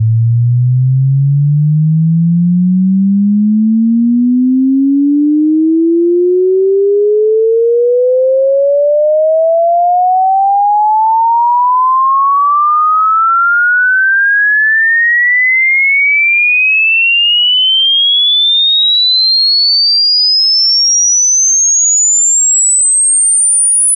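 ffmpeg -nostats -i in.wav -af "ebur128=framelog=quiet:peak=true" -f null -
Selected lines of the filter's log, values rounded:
Integrated loudness:
  I:          -7.7 LUFS
  Threshold: -17.7 LUFS
Loudness range:
  LRA:         4.3 LU
  Threshold: -27.7 LUFS
  LRA low:    -9.9 LUFS
  LRA high:   -5.7 LUFS
True peak:
  Peak:       -6.0 dBFS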